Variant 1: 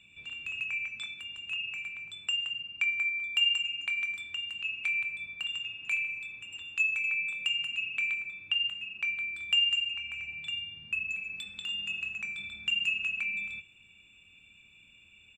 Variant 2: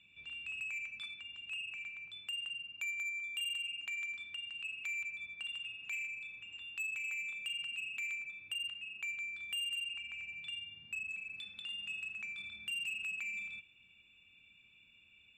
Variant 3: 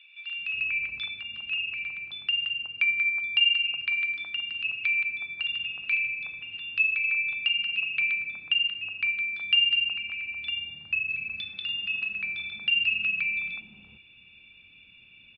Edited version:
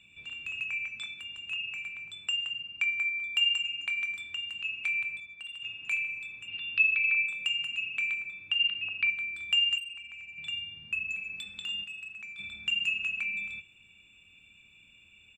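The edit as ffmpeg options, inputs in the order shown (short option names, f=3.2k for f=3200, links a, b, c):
-filter_complex "[1:a]asplit=3[a][b][c];[2:a]asplit=2[d][e];[0:a]asplit=6[f][g][h][i][j][k];[f]atrim=end=5.202[l];[a]atrim=start=5.198:end=5.622[m];[g]atrim=start=5.618:end=6.482[n];[d]atrim=start=6.478:end=7.262[o];[h]atrim=start=7.258:end=8.592[p];[e]atrim=start=8.588:end=9.102[q];[i]atrim=start=9.098:end=9.782[r];[b]atrim=start=9.778:end=10.382[s];[j]atrim=start=10.378:end=11.842[t];[c]atrim=start=11.838:end=12.392[u];[k]atrim=start=12.388[v];[l][m]acrossfade=d=0.004:c1=hsin:c2=hsin[w];[w][n]acrossfade=d=0.004:c1=hsin:c2=hsin[x];[x][o]acrossfade=d=0.004:c1=hsin:c2=hsin[y];[y][p]acrossfade=d=0.004:c1=hsin:c2=hsin[z];[z][q]acrossfade=d=0.004:c1=hsin:c2=hsin[aa];[aa][r]acrossfade=d=0.004:c1=hsin:c2=hsin[ab];[ab][s]acrossfade=d=0.004:c1=hsin:c2=hsin[ac];[ac][t]acrossfade=d=0.004:c1=hsin:c2=hsin[ad];[ad][u]acrossfade=d=0.004:c1=hsin:c2=hsin[ae];[ae][v]acrossfade=d=0.004:c1=hsin:c2=hsin"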